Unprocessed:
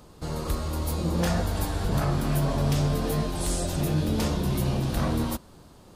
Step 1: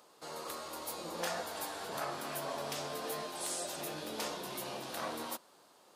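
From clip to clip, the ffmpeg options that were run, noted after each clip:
-af "highpass=540,volume=-5.5dB"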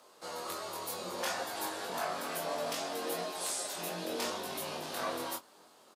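-filter_complex "[0:a]afreqshift=21,asplit=2[a][b];[b]adelay=22,volume=-11dB[c];[a][c]amix=inputs=2:normalize=0,flanger=delay=20:depth=2.9:speed=0.41,volume=5.5dB"

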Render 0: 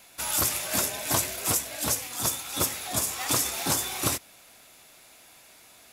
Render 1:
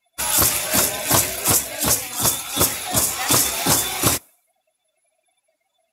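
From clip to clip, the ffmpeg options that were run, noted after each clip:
-af "afftdn=nr=34:nf=-46,volume=8.5dB"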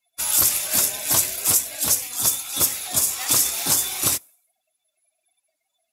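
-af "highshelf=f=3k:g=10.5,volume=-10dB"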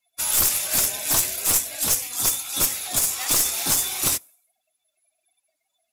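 -af "aeval=exprs='clip(val(0),-1,0.119)':c=same"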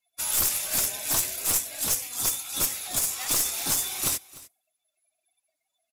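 -af "aecho=1:1:299:0.1,volume=-4.5dB"

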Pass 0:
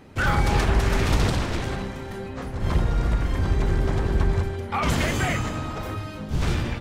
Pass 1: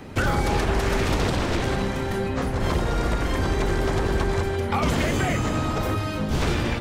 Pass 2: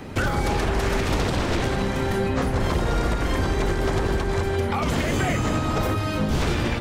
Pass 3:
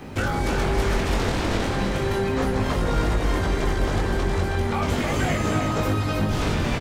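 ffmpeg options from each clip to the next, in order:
-filter_complex "[0:a]acrossover=split=260|620|4100[a][b][c][d];[a]acompressor=threshold=-33dB:ratio=4[e];[b]acompressor=threshold=-35dB:ratio=4[f];[c]acompressor=threshold=-38dB:ratio=4[g];[d]acompressor=threshold=-48dB:ratio=4[h];[e][f][g][h]amix=inputs=4:normalize=0,volume=8.5dB"
-af "alimiter=limit=-16dB:level=0:latency=1:release=226,volume=3dB"
-af "flanger=delay=19:depth=3.1:speed=0.36,acrusher=bits=10:mix=0:aa=0.000001,aecho=1:1:316:0.562,volume=1.5dB"

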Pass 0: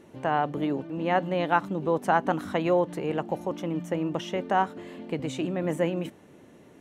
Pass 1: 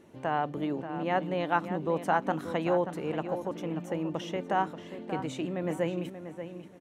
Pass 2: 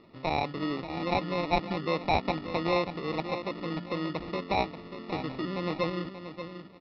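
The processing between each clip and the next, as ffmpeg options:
-filter_complex "[0:a]asplit=2[a][b];[b]adelay=583,lowpass=f=3.6k:p=1,volume=-10dB,asplit=2[c][d];[d]adelay=583,lowpass=f=3.6k:p=1,volume=0.28,asplit=2[e][f];[f]adelay=583,lowpass=f=3.6k:p=1,volume=0.28[g];[a][c][e][g]amix=inputs=4:normalize=0,volume=-4dB"
-af "acrusher=samples=28:mix=1:aa=0.000001,aresample=11025,aresample=44100"

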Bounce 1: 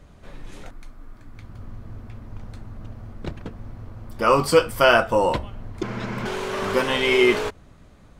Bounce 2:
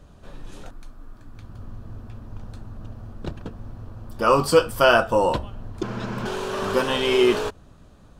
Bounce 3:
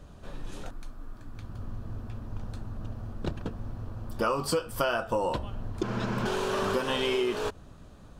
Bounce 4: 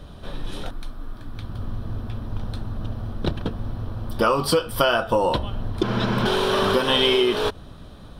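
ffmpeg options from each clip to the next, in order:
-af "equalizer=f=2.1k:t=o:w=0.26:g=-11.5"
-af "acompressor=threshold=-24dB:ratio=16"
-af "superequalizer=13b=2:15b=0.398,volume=8dB"

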